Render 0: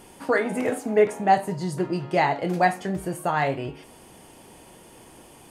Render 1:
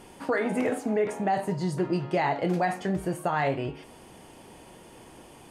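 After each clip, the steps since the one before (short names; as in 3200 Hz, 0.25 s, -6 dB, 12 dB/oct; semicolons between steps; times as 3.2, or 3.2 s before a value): high shelf 8100 Hz -8.5 dB; limiter -17 dBFS, peak gain reduction 10 dB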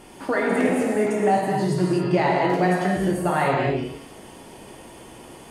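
non-linear reverb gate 0.29 s flat, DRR -2 dB; gain +2.5 dB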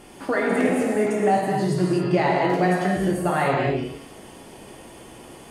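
notch 930 Hz, Q 21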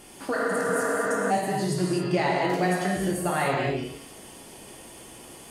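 spectral repair 0.38–1.28, 210–4000 Hz before; high shelf 3500 Hz +10 dB; gain -4.5 dB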